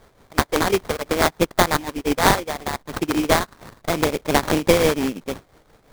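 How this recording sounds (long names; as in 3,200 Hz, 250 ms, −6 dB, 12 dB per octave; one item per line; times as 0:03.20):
a buzz of ramps at a fixed pitch in blocks of 16 samples
tremolo triangle 5.8 Hz, depth 70%
aliases and images of a low sample rate 2,800 Hz, jitter 20%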